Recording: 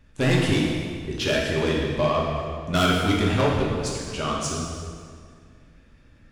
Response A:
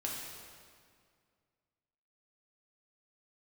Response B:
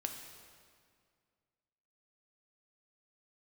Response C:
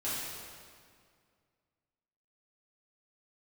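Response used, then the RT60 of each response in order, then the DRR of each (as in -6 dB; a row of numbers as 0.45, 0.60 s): A; 2.1, 2.1, 2.1 s; -3.5, 3.5, -11.5 dB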